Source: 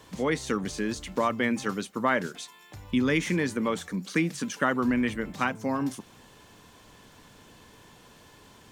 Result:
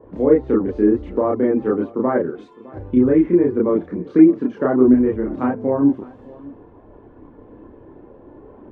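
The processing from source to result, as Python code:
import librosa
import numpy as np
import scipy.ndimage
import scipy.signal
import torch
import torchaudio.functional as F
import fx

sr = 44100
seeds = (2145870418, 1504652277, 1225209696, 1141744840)

p1 = fx.rider(x, sr, range_db=10, speed_s=0.5)
p2 = x + F.gain(torch.from_numpy(p1), -0.5).numpy()
p3 = fx.env_lowpass_down(p2, sr, base_hz=1800.0, full_db=-18.5)
p4 = fx.curve_eq(p3, sr, hz=(190.0, 360.0, 6100.0), db=(0, 11, -28))
p5 = fx.env_lowpass(p4, sr, base_hz=920.0, full_db=-29.0)
p6 = fx.chorus_voices(p5, sr, voices=6, hz=0.48, base_ms=30, depth_ms=2.2, mix_pct=55)
p7 = p6 + fx.echo_single(p6, sr, ms=608, db=-21.5, dry=0)
y = F.gain(torch.from_numpy(p7), 3.0).numpy()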